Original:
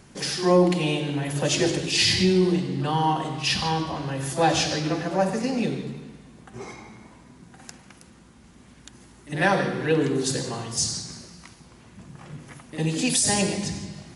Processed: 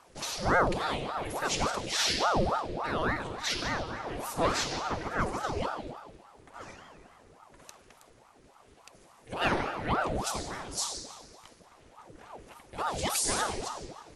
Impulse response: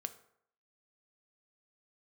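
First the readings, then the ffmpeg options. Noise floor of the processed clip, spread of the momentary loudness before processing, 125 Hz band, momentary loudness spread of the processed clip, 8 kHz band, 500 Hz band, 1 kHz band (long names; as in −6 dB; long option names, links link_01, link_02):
−59 dBFS, 20 LU, −11.5 dB, 19 LU, −7.0 dB, −8.5 dB, −3.0 dB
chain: -af "aeval=exprs='val(0)*sin(2*PI*620*n/s+620*0.75/3.5*sin(2*PI*3.5*n/s))':channel_layout=same,volume=-4.5dB"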